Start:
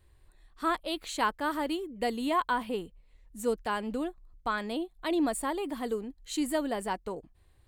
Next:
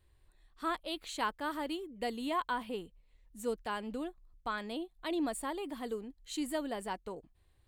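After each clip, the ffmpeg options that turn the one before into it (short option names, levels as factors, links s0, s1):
-af "equalizer=f=3300:w=1.5:g=2.5,volume=0.501"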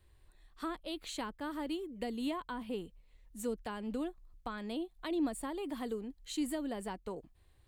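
-filter_complex "[0:a]acrossover=split=350[s0][s1];[s1]acompressor=threshold=0.00708:ratio=6[s2];[s0][s2]amix=inputs=2:normalize=0,volume=1.41"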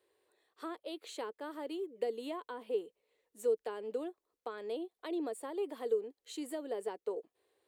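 -af "highpass=f=440:t=q:w=4.9,volume=0.562"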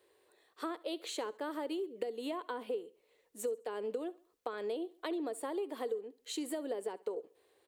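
-af "acompressor=threshold=0.00891:ratio=6,aecho=1:1:68|136|204:0.0891|0.0357|0.0143,volume=2.11"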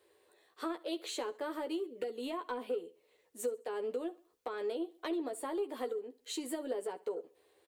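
-filter_complex "[0:a]asoftclip=type=tanh:threshold=0.0473,asplit=2[s0][s1];[s1]adelay=12,volume=0.531[s2];[s0][s2]amix=inputs=2:normalize=0"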